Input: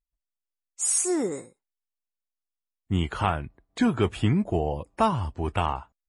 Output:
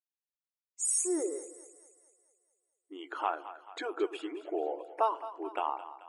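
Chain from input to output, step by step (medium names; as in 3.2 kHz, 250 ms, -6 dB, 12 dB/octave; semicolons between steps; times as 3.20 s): resonances exaggerated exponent 1.5; brick-wall FIR high-pass 290 Hz; two-band feedback delay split 600 Hz, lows 112 ms, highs 218 ms, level -13.5 dB; trim -5.5 dB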